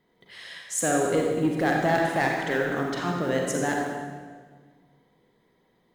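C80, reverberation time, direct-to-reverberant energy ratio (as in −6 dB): 2.5 dB, 1.6 s, −0.5 dB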